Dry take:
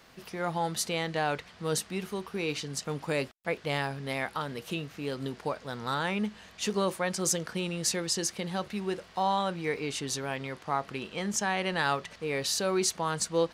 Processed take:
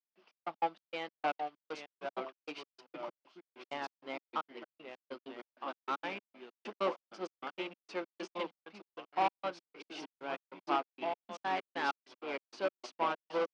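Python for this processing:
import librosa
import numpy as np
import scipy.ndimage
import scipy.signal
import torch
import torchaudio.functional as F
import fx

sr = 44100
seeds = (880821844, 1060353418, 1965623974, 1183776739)

y = fx.echo_pitch(x, sr, ms=729, semitones=-2, count=3, db_per_echo=-6.0)
y = np.repeat(scipy.signal.resample_poly(y, 1, 3), 3)[:len(y)]
y = 10.0 ** (-30.0 / 20.0) * np.tanh(y / 10.0 ** (-30.0 / 20.0))
y = fx.step_gate(y, sr, bpm=194, pattern='..xx..x.xx', floor_db=-60.0, edge_ms=4.5)
y = fx.cabinet(y, sr, low_hz=290.0, low_slope=24, high_hz=4400.0, hz=(440.0, 1800.0, 3900.0), db=(-8, -7, -8))
y = fx.upward_expand(y, sr, threshold_db=-49.0, expansion=2.5)
y = F.gain(torch.from_numpy(y), 7.5).numpy()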